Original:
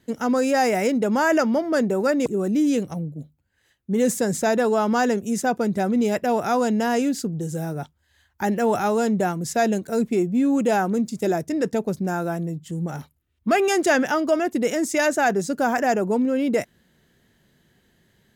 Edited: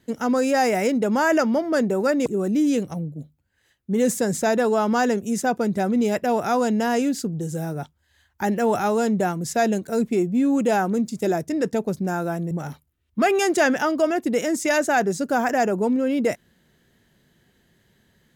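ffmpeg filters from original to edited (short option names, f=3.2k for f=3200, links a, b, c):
-filter_complex "[0:a]asplit=2[a][b];[a]atrim=end=12.512[c];[b]atrim=start=12.798[d];[c][d]acrossfade=d=0.004:c1=hsin:c2=hsin"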